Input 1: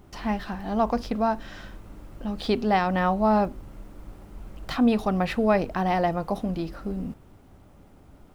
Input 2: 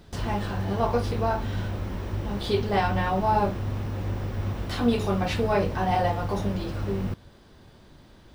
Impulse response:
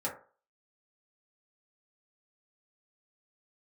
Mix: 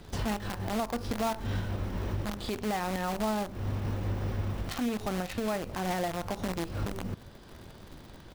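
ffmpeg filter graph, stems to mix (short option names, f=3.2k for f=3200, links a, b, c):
-filter_complex "[0:a]acrusher=bits=5:dc=4:mix=0:aa=0.000001,volume=-2.5dB,asplit=2[a][b];[1:a]acontrast=66,volume=-1,adelay=3.4,volume=-4.5dB[c];[b]apad=whole_len=372675[d];[c][d]sidechaincompress=threshold=-41dB:ratio=8:attack=9.5:release=111[e];[a][e]amix=inputs=2:normalize=0,alimiter=limit=-23dB:level=0:latency=1:release=466"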